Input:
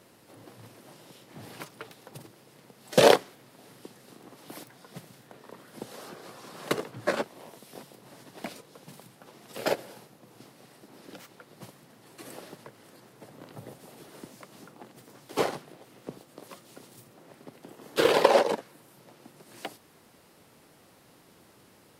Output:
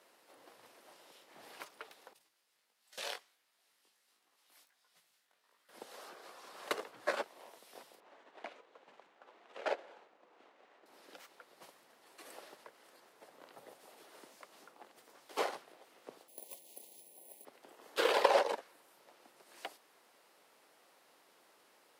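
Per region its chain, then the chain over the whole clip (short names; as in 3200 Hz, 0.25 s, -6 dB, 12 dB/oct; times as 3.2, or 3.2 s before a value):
2.13–5.69 passive tone stack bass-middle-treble 5-5-5 + chorus 1.4 Hz, delay 17.5 ms, depth 3.1 ms
8–10.86 median filter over 9 samples + BPF 240–5900 Hz
16.28–17.45 careless resampling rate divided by 4×, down filtered, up zero stuff + Butterworth band-stop 1400 Hz, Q 0.94
whole clip: HPF 540 Hz 12 dB/oct; high shelf 5600 Hz -4.5 dB; gain -5 dB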